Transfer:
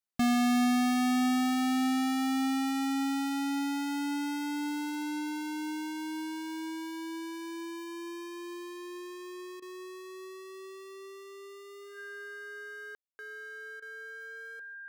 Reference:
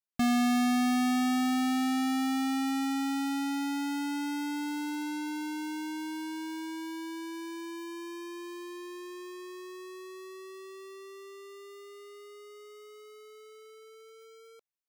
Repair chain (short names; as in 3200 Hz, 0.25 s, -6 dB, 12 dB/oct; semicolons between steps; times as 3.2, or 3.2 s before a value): notch 1600 Hz, Q 30; room tone fill 12.95–13.19; interpolate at 9.6/13.8, 21 ms; inverse comb 0.147 s -20.5 dB